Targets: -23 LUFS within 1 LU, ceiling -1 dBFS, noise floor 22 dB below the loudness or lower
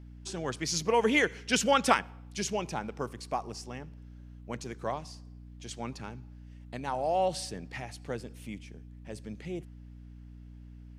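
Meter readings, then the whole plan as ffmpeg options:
hum 60 Hz; highest harmonic 300 Hz; hum level -45 dBFS; loudness -31.5 LUFS; peak level -6.5 dBFS; loudness target -23.0 LUFS
-> -af "bandreject=f=60:t=h:w=4,bandreject=f=120:t=h:w=4,bandreject=f=180:t=h:w=4,bandreject=f=240:t=h:w=4,bandreject=f=300:t=h:w=4"
-af "volume=2.66,alimiter=limit=0.891:level=0:latency=1"

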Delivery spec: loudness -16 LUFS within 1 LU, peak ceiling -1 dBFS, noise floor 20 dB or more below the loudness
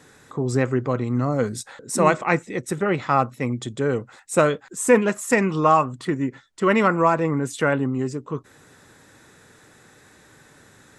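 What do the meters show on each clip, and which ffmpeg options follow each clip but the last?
loudness -22.0 LUFS; peak level -3.5 dBFS; loudness target -16.0 LUFS
-> -af "volume=2,alimiter=limit=0.891:level=0:latency=1"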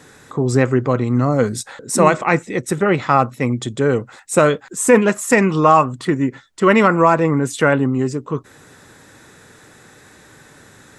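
loudness -16.5 LUFS; peak level -1.0 dBFS; noise floor -47 dBFS

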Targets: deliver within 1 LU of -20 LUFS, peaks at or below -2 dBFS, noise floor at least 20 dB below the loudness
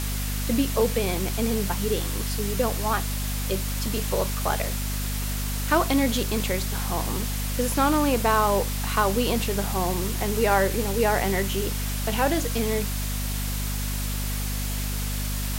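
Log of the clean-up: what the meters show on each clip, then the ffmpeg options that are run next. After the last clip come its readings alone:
hum 50 Hz; highest harmonic 250 Hz; hum level -26 dBFS; noise floor -28 dBFS; noise floor target -46 dBFS; loudness -25.5 LUFS; peak level -7.0 dBFS; loudness target -20.0 LUFS
-> -af "bandreject=f=50:t=h:w=4,bandreject=f=100:t=h:w=4,bandreject=f=150:t=h:w=4,bandreject=f=200:t=h:w=4,bandreject=f=250:t=h:w=4"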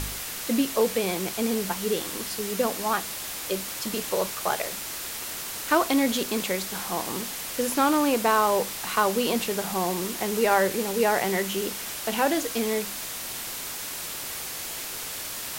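hum not found; noise floor -35 dBFS; noise floor target -47 dBFS
-> -af "afftdn=nr=12:nf=-35"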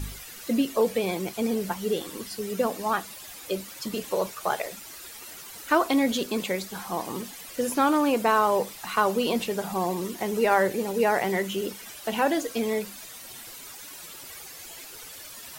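noise floor -43 dBFS; noise floor target -47 dBFS
-> -af "afftdn=nr=6:nf=-43"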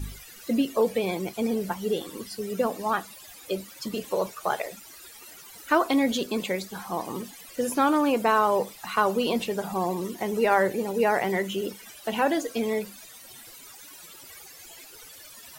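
noise floor -47 dBFS; loudness -27.0 LUFS; peak level -8.0 dBFS; loudness target -20.0 LUFS
-> -af "volume=2.24,alimiter=limit=0.794:level=0:latency=1"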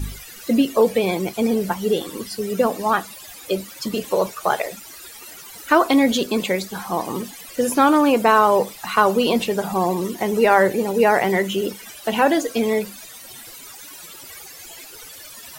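loudness -20.0 LUFS; peak level -2.0 dBFS; noise floor -40 dBFS

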